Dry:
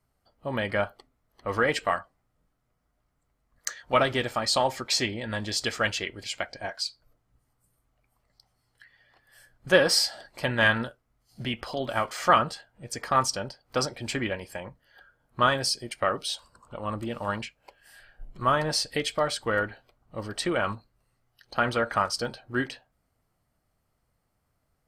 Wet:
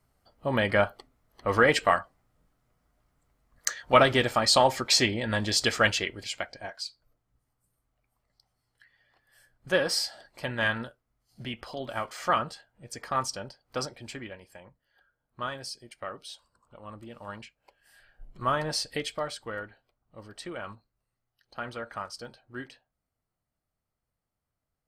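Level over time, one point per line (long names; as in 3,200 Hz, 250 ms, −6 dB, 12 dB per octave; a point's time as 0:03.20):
0:05.86 +3.5 dB
0:06.75 −5.5 dB
0:13.84 −5.5 dB
0:14.29 −12 dB
0:17.07 −12 dB
0:18.44 −3.5 dB
0:18.96 −3.5 dB
0:19.65 −11.5 dB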